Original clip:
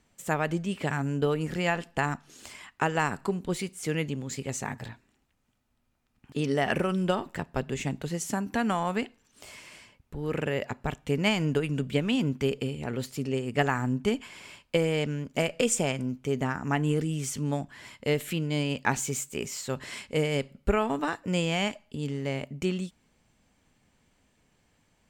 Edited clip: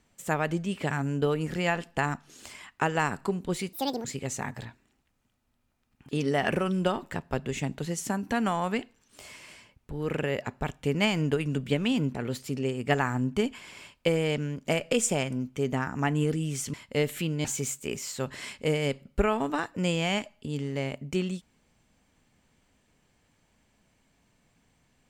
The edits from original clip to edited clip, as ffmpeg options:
-filter_complex "[0:a]asplit=6[s0][s1][s2][s3][s4][s5];[s0]atrim=end=3.734[s6];[s1]atrim=start=3.73:end=4.28,asetpts=PTS-STARTPTS,asetrate=76734,aresample=44100[s7];[s2]atrim=start=4.276:end=12.382[s8];[s3]atrim=start=12.828:end=17.422[s9];[s4]atrim=start=17.848:end=18.562[s10];[s5]atrim=start=18.938[s11];[s6][s7]acrossfade=d=0.004:c1=hsin:c2=hsin[s12];[s12][s8]acrossfade=d=0.004:c1=hsin:c2=hsin[s13];[s13][s9]acrossfade=d=0.004:c1=hsin:c2=hsin[s14];[s14][s10]acrossfade=d=0.004:c1=hsin:c2=hsin[s15];[s15][s11]acrossfade=d=0.004:c1=hsin:c2=hsin"

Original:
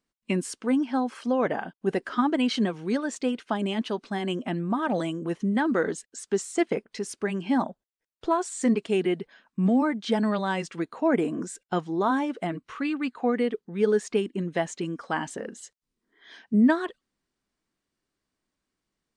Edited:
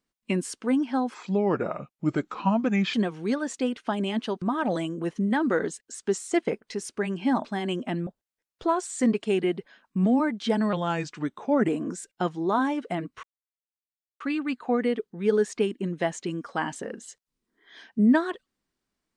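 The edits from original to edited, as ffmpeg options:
-filter_complex "[0:a]asplit=9[s0][s1][s2][s3][s4][s5][s6][s7][s8];[s0]atrim=end=1.144[s9];[s1]atrim=start=1.14:end=2.56,asetpts=PTS-STARTPTS,asetrate=34839,aresample=44100,atrim=end_sample=79268,asetpts=PTS-STARTPTS[s10];[s2]atrim=start=2.556:end=4.042[s11];[s3]atrim=start=4.658:end=7.692[s12];[s4]atrim=start=4.038:end=4.662[s13];[s5]atrim=start=7.688:end=10.354[s14];[s6]atrim=start=10.35:end=11.2,asetpts=PTS-STARTPTS,asetrate=39249,aresample=44100[s15];[s7]atrim=start=11.196:end=12.75,asetpts=PTS-STARTPTS,afade=t=out:st=1.55:d=0.004:c=hsin,apad=pad_dur=0.97[s16];[s8]atrim=start=12.75,asetpts=PTS-STARTPTS,afade=t=in:d=0.004:c=hsin[s17];[s9][s10]acrossfade=d=0.004:c1=hsin:c2=hsin[s18];[s18][s11]acrossfade=d=0.004:c1=hsin:c2=hsin[s19];[s19][s12]acrossfade=d=0.004:c1=hsin:c2=hsin[s20];[s20][s13]acrossfade=d=0.004:c1=hsin:c2=hsin[s21];[s21][s14]acrossfade=d=0.004:c1=hsin:c2=hsin[s22];[s22][s15]acrossfade=d=0.004:c1=hsin:c2=hsin[s23];[s16][s17]concat=n=2:v=0:a=1[s24];[s23][s24]acrossfade=d=0.004:c1=hsin:c2=hsin"

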